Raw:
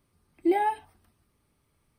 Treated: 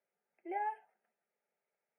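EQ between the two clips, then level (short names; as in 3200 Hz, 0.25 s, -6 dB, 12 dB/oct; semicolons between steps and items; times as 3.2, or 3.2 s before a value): running mean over 11 samples; Bessel high-pass 380 Hz, order 8; fixed phaser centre 1100 Hz, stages 6; -6.5 dB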